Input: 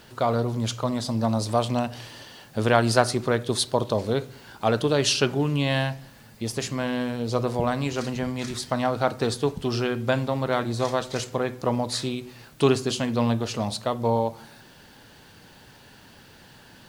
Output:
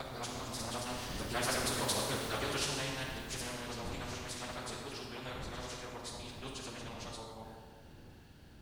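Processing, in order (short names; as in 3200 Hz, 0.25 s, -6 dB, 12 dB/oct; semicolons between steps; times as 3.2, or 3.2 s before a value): local time reversal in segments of 0.24 s; wind noise 120 Hz -28 dBFS; Doppler pass-by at 3.74, 9 m/s, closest 4.8 m; dynamic EQ 1400 Hz, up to +4 dB, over -45 dBFS, Q 1.2; in parallel at -3 dB: compressor 12:1, threshold -37 dBFS, peak gain reduction 21.5 dB; on the sum: hard clip -9 dBFS, distortion -30 dB; plain phase-vocoder stretch 0.51×; reverb RT60 1.1 s, pre-delay 18 ms, DRR 2 dB; spectral compressor 2:1; gain -6.5 dB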